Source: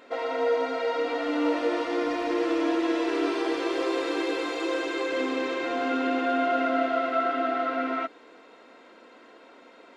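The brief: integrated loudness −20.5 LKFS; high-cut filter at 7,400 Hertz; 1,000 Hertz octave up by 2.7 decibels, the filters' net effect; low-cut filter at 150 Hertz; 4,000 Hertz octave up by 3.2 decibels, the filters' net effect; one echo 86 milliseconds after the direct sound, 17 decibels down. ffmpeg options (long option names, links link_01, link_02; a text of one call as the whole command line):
ffmpeg -i in.wav -af "highpass=150,lowpass=7400,equalizer=frequency=1000:width_type=o:gain=4,equalizer=frequency=4000:width_type=o:gain=4,aecho=1:1:86:0.141,volume=5.5dB" out.wav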